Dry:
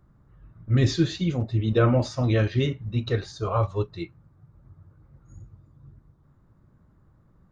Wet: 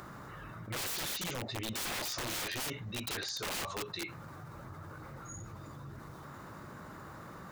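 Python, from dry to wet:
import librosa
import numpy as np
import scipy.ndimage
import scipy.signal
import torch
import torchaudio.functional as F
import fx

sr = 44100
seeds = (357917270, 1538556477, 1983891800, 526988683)

y = fx.highpass(x, sr, hz=1200.0, slope=6)
y = fx.notch(y, sr, hz=3300.0, q=27.0)
y = (np.mod(10.0 ** (32.5 / 20.0) * y + 1.0, 2.0) - 1.0) / 10.0 ** (32.5 / 20.0)
y = fx.env_flatten(y, sr, amount_pct=70)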